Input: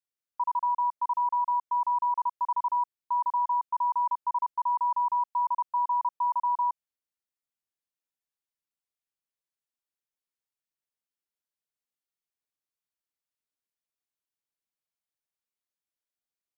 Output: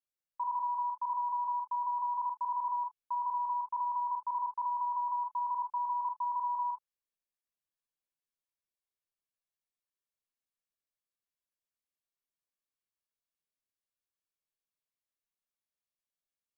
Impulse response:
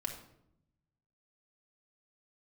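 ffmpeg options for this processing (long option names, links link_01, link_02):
-filter_complex "[1:a]atrim=start_sample=2205,afade=type=out:start_time=0.19:duration=0.01,atrim=end_sample=8820,asetrate=83790,aresample=44100[link_01];[0:a][link_01]afir=irnorm=-1:irlink=0"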